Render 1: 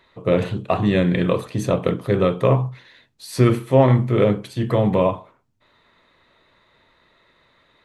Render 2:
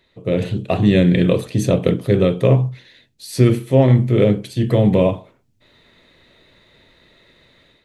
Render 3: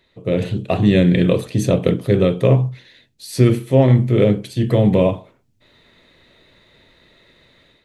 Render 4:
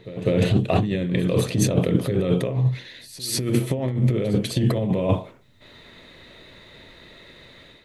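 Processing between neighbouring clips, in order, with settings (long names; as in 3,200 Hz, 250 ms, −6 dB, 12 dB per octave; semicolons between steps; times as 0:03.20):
parametric band 1,100 Hz −12.5 dB 1.2 octaves; automatic gain control gain up to 9.5 dB
no processing that can be heard
compressor whose output falls as the input rises −21 dBFS, ratio −1; echo ahead of the sound 199 ms −16 dB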